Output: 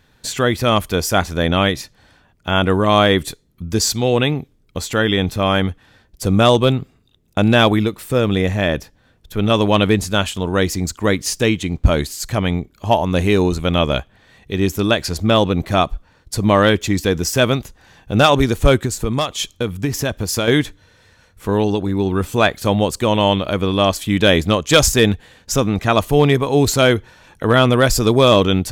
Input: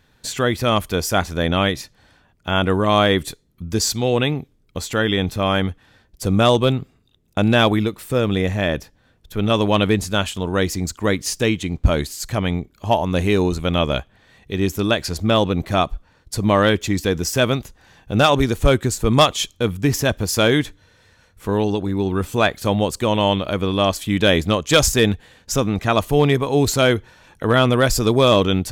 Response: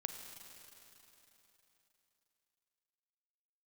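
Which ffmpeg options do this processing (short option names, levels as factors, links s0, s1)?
-filter_complex "[0:a]asettb=1/sr,asplit=3[s0][s1][s2];[s0]atrim=end=18.834[s3];[s1]atrim=start=18.83:end=20.48,asetpts=PTS-STARTPTS,afade=t=in:d=0.004:c=qsin,afade=t=out:st=1.646:d=0.004:c=qsin,acompressor=threshold=0.112:ratio=5[s4];[s2]atrim=start=20.476[s5];[s3][s4]acrossfade=d=0.004:c1=hsin:c2=qsin[s6];[s6][s5]acrossfade=d=0.004:c1=qsin:c2=hsin,volume=1.33"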